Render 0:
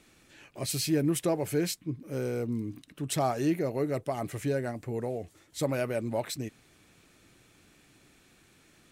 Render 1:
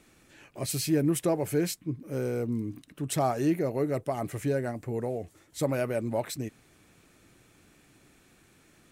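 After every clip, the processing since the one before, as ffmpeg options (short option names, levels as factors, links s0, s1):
-af "equalizer=f=3800:w=0.82:g=-4,volume=1.19"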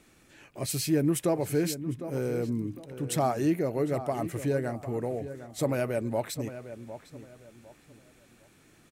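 -filter_complex "[0:a]asplit=2[s0][s1];[s1]adelay=755,lowpass=f=2500:p=1,volume=0.251,asplit=2[s2][s3];[s3]adelay=755,lowpass=f=2500:p=1,volume=0.3,asplit=2[s4][s5];[s5]adelay=755,lowpass=f=2500:p=1,volume=0.3[s6];[s0][s2][s4][s6]amix=inputs=4:normalize=0"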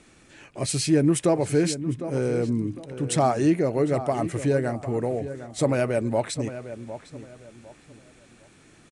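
-af "aresample=22050,aresample=44100,volume=1.88"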